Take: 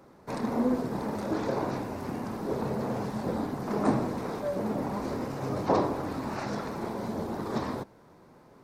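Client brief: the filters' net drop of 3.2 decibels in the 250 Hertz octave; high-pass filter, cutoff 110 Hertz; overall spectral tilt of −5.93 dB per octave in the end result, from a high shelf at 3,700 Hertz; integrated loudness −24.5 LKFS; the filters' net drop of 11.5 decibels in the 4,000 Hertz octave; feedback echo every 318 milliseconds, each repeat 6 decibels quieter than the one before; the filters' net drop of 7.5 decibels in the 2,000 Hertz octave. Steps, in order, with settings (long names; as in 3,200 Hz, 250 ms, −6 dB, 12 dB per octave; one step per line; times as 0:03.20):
high-pass filter 110 Hz
parametric band 250 Hz −3.5 dB
parametric band 2,000 Hz −7 dB
high-shelf EQ 3,700 Hz −8 dB
parametric band 4,000 Hz −7 dB
repeating echo 318 ms, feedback 50%, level −6 dB
level +8.5 dB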